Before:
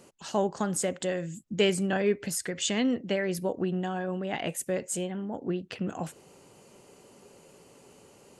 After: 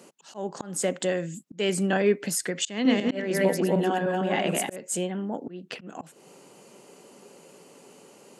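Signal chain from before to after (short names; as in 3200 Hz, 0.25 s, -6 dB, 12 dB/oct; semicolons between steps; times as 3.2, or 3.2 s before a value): 2.7–4.76 regenerating reverse delay 0.151 s, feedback 41%, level -1 dB; HPF 160 Hz 24 dB/oct; auto swell 0.262 s; gain +4 dB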